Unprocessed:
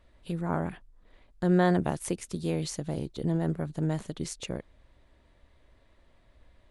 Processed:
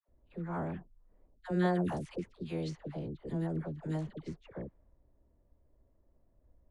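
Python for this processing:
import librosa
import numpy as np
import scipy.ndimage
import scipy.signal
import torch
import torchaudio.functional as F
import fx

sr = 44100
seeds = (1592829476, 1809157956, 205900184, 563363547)

y = fx.env_lowpass(x, sr, base_hz=560.0, full_db=-22.5)
y = fx.dispersion(y, sr, late='lows', ms=87.0, hz=780.0)
y = F.gain(torch.from_numpy(y), -6.5).numpy()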